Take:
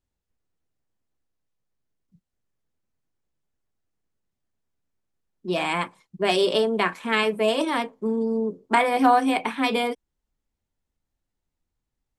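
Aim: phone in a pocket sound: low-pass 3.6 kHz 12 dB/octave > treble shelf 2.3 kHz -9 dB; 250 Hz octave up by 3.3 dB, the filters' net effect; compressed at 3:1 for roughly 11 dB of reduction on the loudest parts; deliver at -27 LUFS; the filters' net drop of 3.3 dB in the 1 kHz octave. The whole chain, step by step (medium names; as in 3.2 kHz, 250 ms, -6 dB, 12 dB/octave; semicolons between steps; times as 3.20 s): peaking EQ 250 Hz +4 dB; peaking EQ 1 kHz -3.5 dB; compression 3:1, threshold -28 dBFS; low-pass 3.6 kHz 12 dB/octave; treble shelf 2.3 kHz -9 dB; trim +4.5 dB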